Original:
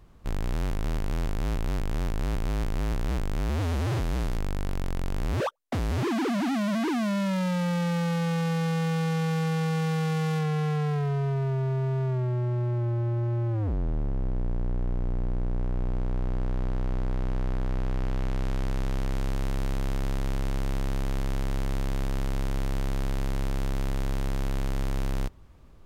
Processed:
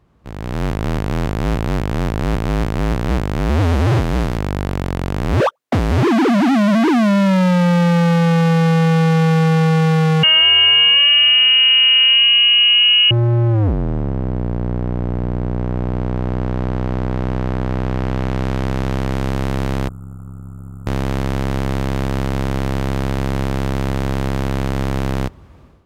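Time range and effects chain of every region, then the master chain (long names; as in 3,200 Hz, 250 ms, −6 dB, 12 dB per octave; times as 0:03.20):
0:10.23–0:13.11: voice inversion scrambler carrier 3,000 Hz + comb filter 1.8 ms, depth 88%
0:19.88–0:20.87: linear-phase brick-wall band-stop 1,300–7,100 Hz + low-shelf EQ 420 Hz −9.5 dB + saturating transformer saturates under 270 Hz
whole clip: high-pass filter 65 Hz 12 dB per octave; high-shelf EQ 4,600 Hz −8.5 dB; automatic gain control gain up to 13.5 dB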